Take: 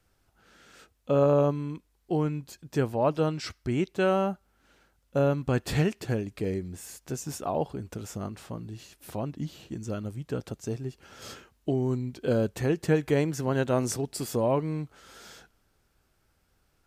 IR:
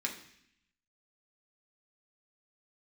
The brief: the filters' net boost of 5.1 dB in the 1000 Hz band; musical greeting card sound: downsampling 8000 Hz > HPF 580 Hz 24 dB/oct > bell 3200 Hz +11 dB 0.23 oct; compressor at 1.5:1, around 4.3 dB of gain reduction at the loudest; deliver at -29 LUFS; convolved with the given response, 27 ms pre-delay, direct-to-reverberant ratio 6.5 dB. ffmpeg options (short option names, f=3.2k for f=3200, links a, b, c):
-filter_complex "[0:a]equalizer=f=1k:t=o:g=7,acompressor=threshold=-28dB:ratio=1.5,asplit=2[a][b];[1:a]atrim=start_sample=2205,adelay=27[c];[b][c]afir=irnorm=-1:irlink=0,volume=-9.5dB[d];[a][d]amix=inputs=2:normalize=0,aresample=8000,aresample=44100,highpass=f=580:w=0.5412,highpass=f=580:w=1.3066,equalizer=f=3.2k:t=o:w=0.23:g=11,volume=6dB"